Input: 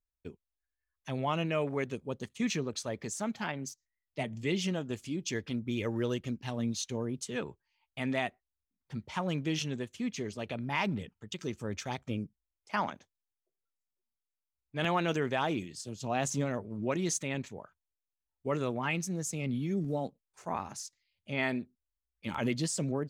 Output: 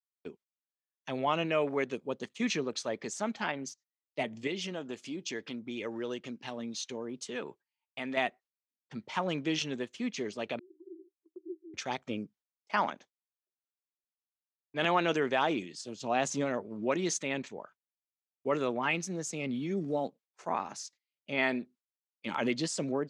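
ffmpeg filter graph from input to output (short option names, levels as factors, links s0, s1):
-filter_complex "[0:a]asettb=1/sr,asplit=3[s0][s1][s2];[s0]atrim=end=4.474[s3];[s1]atrim=start=4.47:end=8.17,asetpts=PTS-STARTPTS,afade=t=in:d=0.004:c=qsin,afade=t=out:st=3.696:d=0.004:c=qsin,acompressor=threshold=0.0158:ratio=2:attack=3.2:release=140:knee=1:detection=peak,equalizer=f=61:t=o:w=2:g=-6[s4];[s2]atrim=start=8.166[s5];[s3][s4]acrossfade=d=0.004:c1=hsin:c2=qsin[s6];[s6][s5]acrossfade=d=0.004:c1=qsin:c2=hsin,asettb=1/sr,asplit=3[s7][s8][s9];[s7]atrim=end=10.594[s10];[s8]atrim=start=10.59:end=11.74,asetpts=PTS-STARTPTS,afade=t=in:d=0.004:c=qsin,afade=t=out:st=1.146:d=0.004:c=qsin,acrusher=bits=8:mix=0:aa=0.5,asuperpass=centerf=350:order=12:qfactor=4.7,aecho=1:1:1:0.53,atrim=end_sample=50715[s11];[s9]atrim=start=11.736[s12];[s10][s11]acrossfade=d=0.004:c1=hsin:c2=qsin[s13];[s13][s12]acrossfade=d=0.004:c1=qsin:c2=hsin,lowpass=6100,agate=range=0.126:threshold=0.00126:ratio=16:detection=peak,highpass=250,volume=1.41"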